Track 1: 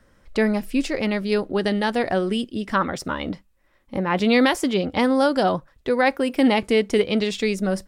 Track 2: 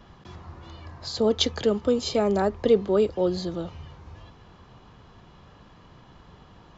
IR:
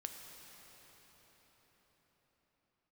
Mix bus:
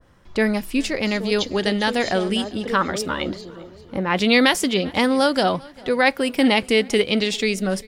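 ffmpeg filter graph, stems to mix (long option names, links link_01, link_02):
-filter_complex "[0:a]volume=0dB,asplit=2[link_01][link_02];[link_02]volume=-23.5dB[link_03];[1:a]volume=-9dB,asplit=2[link_04][link_05];[link_05]volume=-12dB[link_06];[link_03][link_06]amix=inputs=2:normalize=0,aecho=0:1:398|796|1194|1592|1990|2388|2786:1|0.47|0.221|0.104|0.0488|0.0229|0.0108[link_07];[link_01][link_04][link_07]amix=inputs=3:normalize=0,adynamicequalizer=threshold=0.0251:dfrequency=1700:dqfactor=0.7:tfrequency=1700:tqfactor=0.7:attack=5:release=100:ratio=0.375:range=3.5:mode=boostabove:tftype=highshelf"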